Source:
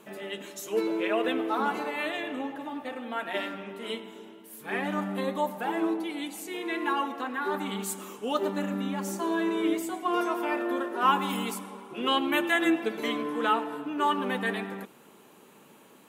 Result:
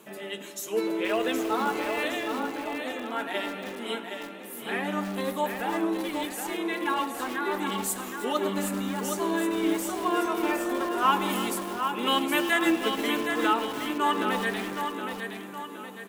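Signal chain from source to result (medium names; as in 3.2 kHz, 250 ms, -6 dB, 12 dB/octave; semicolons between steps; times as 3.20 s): high-pass 71 Hz 24 dB/octave; treble shelf 4.9 kHz +5.5 dB; on a send: feedback delay 768 ms, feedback 46%, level -6.5 dB; on the sum: bit-crushed delay 315 ms, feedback 35%, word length 5-bit, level -11 dB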